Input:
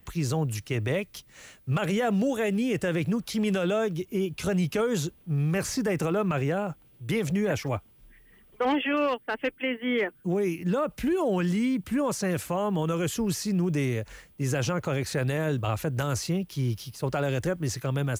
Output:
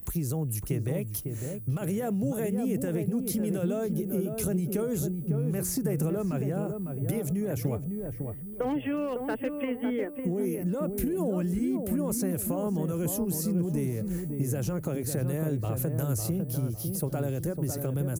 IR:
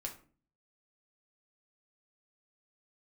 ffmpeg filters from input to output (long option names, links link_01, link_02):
-filter_complex "[0:a]firequalizer=gain_entry='entry(290,0);entry(1000,-10);entry(3200,-14);entry(11000,10)':delay=0.05:min_phase=1,acompressor=threshold=-34dB:ratio=6,asplit=2[link_01][link_02];[link_02]adelay=553,lowpass=frequency=920:poles=1,volume=-4.5dB,asplit=2[link_03][link_04];[link_04]adelay=553,lowpass=frequency=920:poles=1,volume=0.38,asplit=2[link_05][link_06];[link_06]adelay=553,lowpass=frequency=920:poles=1,volume=0.38,asplit=2[link_07][link_08];[link_08]adelay=553,lowpass=frequency=920:poles=1,volume=0.38,asplit=2[link_09][link_10];[link_10]adelay=553,lowpass=frequency=920:poles=1,volume=0.38[link_11];[link_03][link_05][link_07][link_09][link_11]amix=inputs=5:normalize=0[link_12];[link_01][link_12]amix=inputs=2:normalize=0,volume=6.5dB"